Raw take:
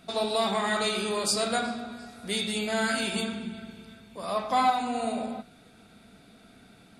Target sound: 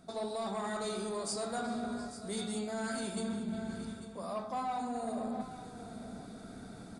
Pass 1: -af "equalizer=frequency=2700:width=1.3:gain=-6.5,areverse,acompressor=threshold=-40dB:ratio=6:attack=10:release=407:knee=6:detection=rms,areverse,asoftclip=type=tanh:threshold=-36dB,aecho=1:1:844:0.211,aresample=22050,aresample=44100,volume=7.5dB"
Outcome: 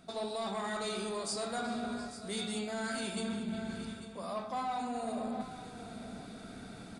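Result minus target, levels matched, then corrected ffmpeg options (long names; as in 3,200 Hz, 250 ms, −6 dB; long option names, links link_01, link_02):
2,000 Hz band +3.0 dB
-af "equalizer=frequency=2700:width=1.3:gain=-16,areverse,acompressor=threshold=-40dB:ratio=6:attack=10:release=407:knee=6:detection=rms,areverse,asoftclip=type=tanh:threshold=-36dB,aecho=1:1:844:0.211,aresample=22050,aresample=44100,volume=7.5dB"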